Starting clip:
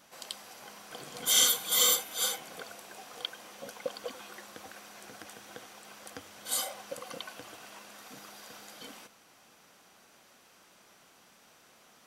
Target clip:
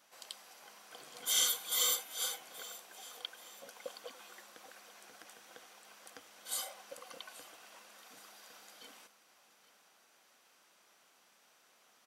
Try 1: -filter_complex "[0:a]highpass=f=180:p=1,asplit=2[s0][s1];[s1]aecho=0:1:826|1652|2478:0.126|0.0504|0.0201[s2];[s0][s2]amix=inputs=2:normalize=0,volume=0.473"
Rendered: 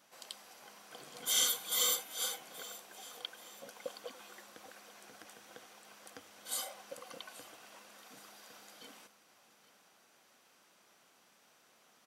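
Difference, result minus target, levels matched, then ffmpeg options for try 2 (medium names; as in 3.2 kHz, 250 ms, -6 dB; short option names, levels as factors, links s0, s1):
250 Hz band +5.5 dB
-filter_complex "[0:a]highpass=f=510:p=1,asplit=2[s0][s1];[s1]aecho=0:1:826|1652|2478:0.126|0.0504|0.0201[s2];[s0][s2]amix=inputs=2:normalize=0,volume=0.473"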